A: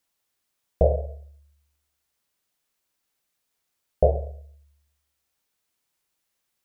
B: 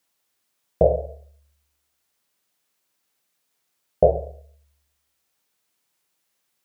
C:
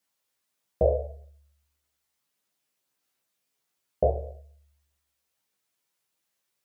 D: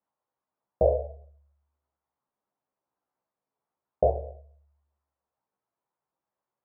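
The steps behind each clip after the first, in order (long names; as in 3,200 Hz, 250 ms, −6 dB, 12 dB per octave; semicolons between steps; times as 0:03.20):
high-pass filter 110 Hz 12 dB per octave; level +4 dB
multi-voice chorus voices 2, 0.81 Hz, delay 15 ms, depth 1.1 ms; level −2.5 dB
low-pass with resonance 950 Hz, resonance Q 1.9; level −2 dB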